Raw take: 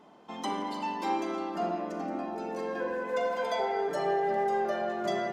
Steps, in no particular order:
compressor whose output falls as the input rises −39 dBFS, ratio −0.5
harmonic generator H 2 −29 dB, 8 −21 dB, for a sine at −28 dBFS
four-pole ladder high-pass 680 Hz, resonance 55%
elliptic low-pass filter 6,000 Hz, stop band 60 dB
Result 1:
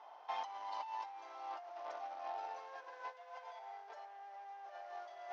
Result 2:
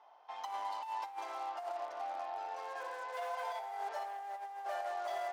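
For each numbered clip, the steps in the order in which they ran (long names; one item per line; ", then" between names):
harmonic generator, then elliptic low-pass filter, then compressor whose output falls as the input rises, then four-pole ladder high-pass
elliptic low-pass filter, then harmonic generator, then four-pole ladder high-pass, then compressor whose output falls as the input rises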